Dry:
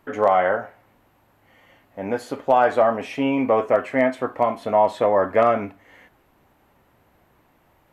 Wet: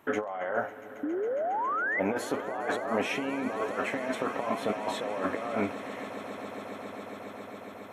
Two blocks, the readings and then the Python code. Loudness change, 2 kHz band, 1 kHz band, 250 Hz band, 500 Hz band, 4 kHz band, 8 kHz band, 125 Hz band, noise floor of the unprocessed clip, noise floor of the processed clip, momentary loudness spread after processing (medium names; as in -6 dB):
-11.5 dB, -3.0 dB, -11.0 dB, -7.0 dB, -11.0 dB, -1.5 dB, no reading, -8.0 dB, -61 dBFS, -45 dBFS, 12 LU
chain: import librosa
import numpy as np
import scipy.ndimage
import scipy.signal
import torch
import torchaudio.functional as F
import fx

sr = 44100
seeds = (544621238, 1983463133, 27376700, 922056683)

y = fx.spec_paint(x, sr, seeds[0], shape='rise', start_s=1.03, length_s=0.97, low_hz=280.0, high_hz=2100.0, level_db=-22.0)
y = fx.over_compress(y, sr, threshold_db=-27.0, ratio=-1.0)
y = fx.highpass(y, sr, hz=210.0, slope=6)
y = fx.notch(y, sr, hz=4700.0, q=5.1)
y = fx.echo_swell(y, sr, ms=137, loudest=8, wet_db=-18)
y = F.gain(torch.from_numpy(y), -4.0).numpy()